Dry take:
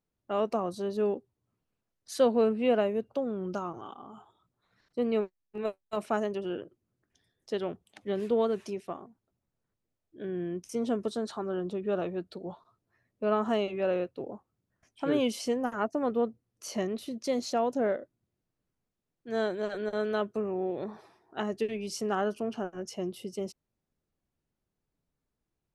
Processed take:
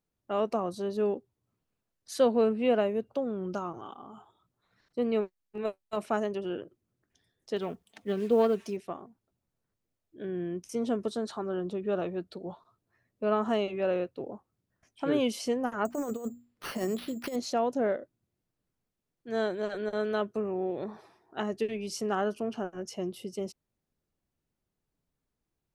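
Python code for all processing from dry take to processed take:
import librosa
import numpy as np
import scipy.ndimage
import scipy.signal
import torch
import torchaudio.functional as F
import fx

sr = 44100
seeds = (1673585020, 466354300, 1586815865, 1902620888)

y = fx.chain(x, sr, fx.self_delay(depth_ms=0.086),
    fx.comb(ms=4.4, depth=0.41),
    fx.quant_companded(bits=8), at=(7.56, 8.77))
y = fx.chain(y, sr, fx.hum_notches(base_hz=60, count=5),
    fx.over_compress(threshold_db=-31.0, ratio=-0.5),
    fx.resample_bad(factor=6, down='none', up='hold'), at=(15.85, 17.36))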